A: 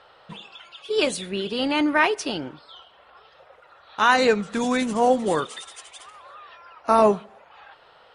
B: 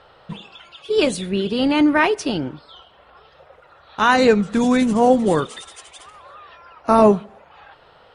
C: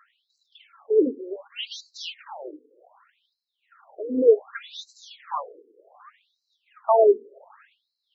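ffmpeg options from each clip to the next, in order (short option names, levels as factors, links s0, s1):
-af "lowshelf=f=330:g=11,volume=1.12"
-af "adynamicsmooth=sensitivity=2.5:basefreq=2000,afftfilt=real='re*between(b*sr/1024,350*pow(5600/350,0.5+0.5*sin(2*PI*0.66*pts/sr))/1.41,350*pow(5600/350,0.5+0.5*sin(2*PI*0.66*pts/sr))*1.41)':imag='im*between(b*sr/1024,350*pow(5600/350,0.5+0.5*sin(2*PI*0.66*pts/sr))/1.41,350*pow(5600/350,0.5+0.5*sin(2*PI*0.66*pts/sr))*1.41)':win_size=1024:overlap=0.75"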